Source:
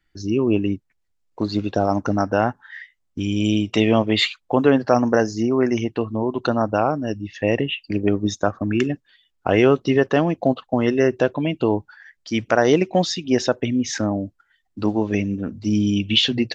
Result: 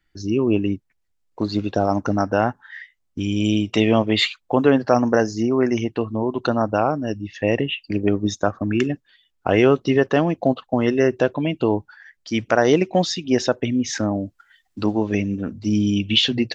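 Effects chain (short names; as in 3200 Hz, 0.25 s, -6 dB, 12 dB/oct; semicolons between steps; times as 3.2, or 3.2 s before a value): 14.15–15.53 mismatched tape noise reduction encoder only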